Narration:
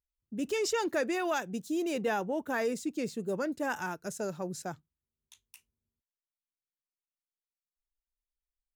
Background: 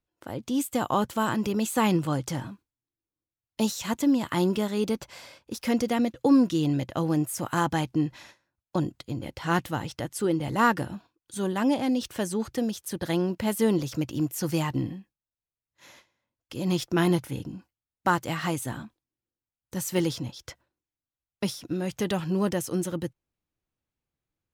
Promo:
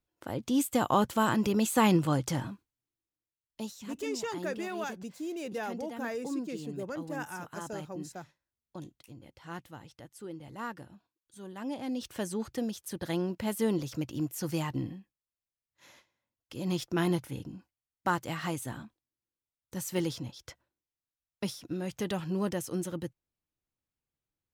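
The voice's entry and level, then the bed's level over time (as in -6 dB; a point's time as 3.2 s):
3.50 s, -5.5 dB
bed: 2.9 s -0.5 dB
3.86 s -17 dB
11.44 s -17 dB
12.13 s -5.5 dB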